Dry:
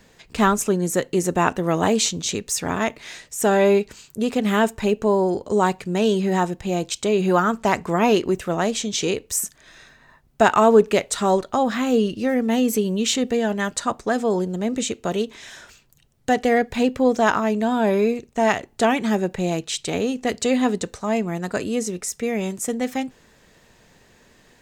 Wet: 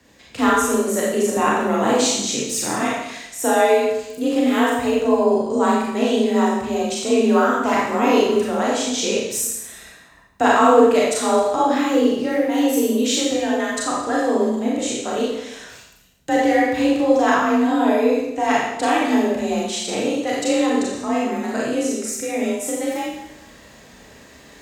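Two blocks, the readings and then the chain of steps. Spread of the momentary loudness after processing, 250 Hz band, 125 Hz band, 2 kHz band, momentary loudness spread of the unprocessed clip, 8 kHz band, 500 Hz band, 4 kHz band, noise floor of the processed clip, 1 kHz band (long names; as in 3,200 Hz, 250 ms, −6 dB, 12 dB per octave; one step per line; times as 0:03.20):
8 LU, +2.5 dB, can't be measured, +2.5 dB, 7 LU, +2.5 dB, +2.0 dB, +2.0 dB, −47 dBFS, +3.0 dB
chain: mains-hum notches 60/120/180 Hz
reversed playback
upward compression, threshold −38 dBFS
reversed playback
frequency shifter +38 Hz
four-comb reverb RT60 0.87 s, combs from 28 ms, DRR −5 dB
level −4 dB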